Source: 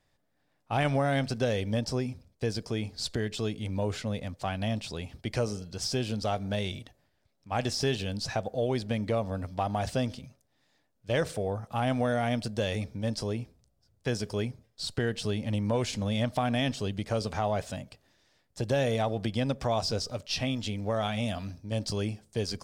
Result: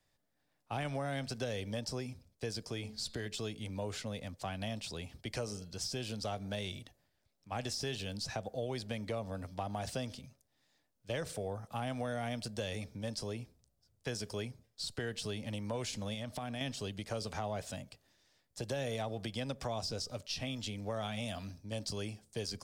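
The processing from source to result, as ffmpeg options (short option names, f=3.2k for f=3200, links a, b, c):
-filter_complex "[0:a]asettb=1/sr,asplit=3[a][b][c];[a]atrim=end=2.624[d];[b]atrim=start=2.62:end=3.26,asetpts=PTS-STARTPTS,afade=t=in:d=0.004:c=qsin,afade=t=out:st=0.636:d=0.004:c=qsin,bandreject=f=216.2:t=h:w=4,bandreject=f=432.4:t=h:w=4,bandreject=f=648.6:t=h:w=4,bandreject=f=864.8:t=h:w=4,bandreject=f=1.081k:t=h:w=4,bandreject=f=1.2972k:t=h:w=4,bandreject=f=1.5134k:t=h:w=4,bandreject=f=1.7296k:t=h:w=4,bandreject=f=1.9458k:t=h:w=4,bandreject=f=2.162k:t=h:w=4,bandreject=f=2.3782k:t=h:w=4,bandreject=f=2.5944k:t=h:w=4,bandreject=f=2.8106k:t=h:w=4,bandreject=f=3.0268k:t=h:w=4,bandreject=f=3.243k:t=h:w=4,bandreject=f=3.4592k:t=h:w=4,bandreject=f=3.6754k:t=h:w=4,bandreject=f=3.8916k:t=h:w=4,bandreject=f=4.1078k:t=h:w=4,bandreject=f=4.324k:t=h:w=4,bandreject=f=4.5402k:t=h:w=4,bandreject=f=4.7564k:t=h:w=4,bandreject=f=4.9726k:t=h:w=4[e];[c]atrim=start=3.256[f];[d][e]acrossfade=d=0.004:c1=hsin:c2=qsin[g];[g][f]acrossfade=d=0.004:c1=qsin:c2=hsin,asettb=1/sr,asplit=3[h][i][j];[h]atrim=end=16.144[k];[i]atrim=start=16.14:end=16.61,asetpts=PTS-STARTPTS,afade=t=in:d=0.004:c=qsin,afade=t=out:st=0.466:d=0.004:c=qsin,acompressor=threshold=-30dB:ratio=6:attack=3.2:release=140:knee=1:detection=peak[l];[j]atrim=start=16.606[m];[k][l]acrossfade=d=0.004:c1=hsin:c2=qsin[n];[n][m]acrossfade=d=0.004:c1=qsin:c2=hsin,highshelf=f=4k:g=6.5,acrossover=split=160|410[o][p][q];[o]acompressor=threshold=-38dB:ratio=4[r];[p]acompressor=threshold=-38dB:ratio=4[s];[q]acompressor=threshold=-31dB:ratio=4[t];[r][s][t]amix=inputs=3:normalize=0,volume=-6dB"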